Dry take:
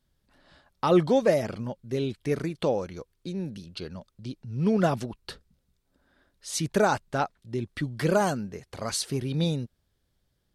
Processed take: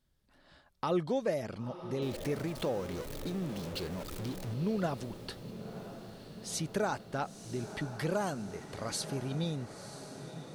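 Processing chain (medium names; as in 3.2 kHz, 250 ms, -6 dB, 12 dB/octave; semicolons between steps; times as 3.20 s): 2.02–4.54 s: jump at every zero crossing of -33 dBFS; compression 1.5:1, threshold -37 dBFS, peak gain reduction 8 dB; echo that smears into a reverb 987 ms, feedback 66%, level -11.5 dB; trim -3 dB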